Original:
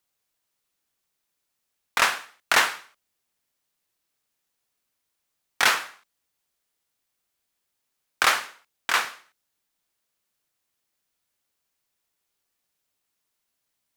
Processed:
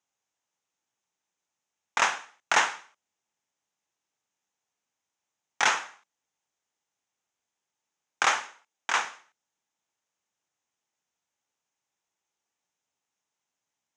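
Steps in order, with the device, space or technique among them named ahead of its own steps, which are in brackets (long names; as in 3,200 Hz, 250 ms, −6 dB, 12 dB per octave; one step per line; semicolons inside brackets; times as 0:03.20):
0:08.42–0:08.95: high-pass filter 170 Hz
car door speaker (loudspeaker in its box 100–7,200 Hz, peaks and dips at 850 Hz +7 dB, 4,400 Hz −8 dB, 6,500 Hz +7 dB)
level −4 dB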